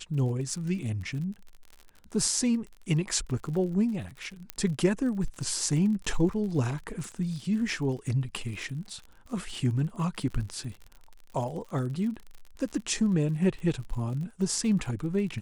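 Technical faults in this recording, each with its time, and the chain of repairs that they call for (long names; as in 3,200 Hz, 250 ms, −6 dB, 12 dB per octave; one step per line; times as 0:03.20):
surface crackle 46 per second −37 dBFS
0:04.50: click −15 dBFS
0:07.04: click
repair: click removal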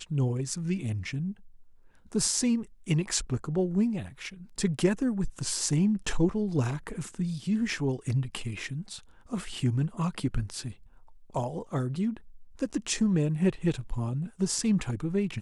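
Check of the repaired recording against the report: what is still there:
0:04.50: click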